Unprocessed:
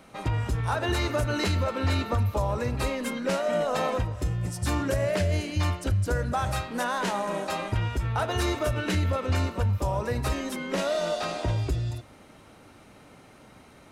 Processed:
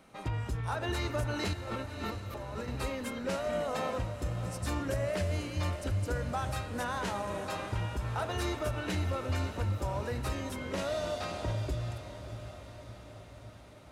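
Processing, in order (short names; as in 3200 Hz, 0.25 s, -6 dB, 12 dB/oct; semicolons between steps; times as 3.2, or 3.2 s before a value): 1.53–2.68 negative-ratio compressor -34 dBFS, ratio -1; on a send: diffused feedback echo 0.654 s, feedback 61%, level -11 dB; on the sum: gain -7 dB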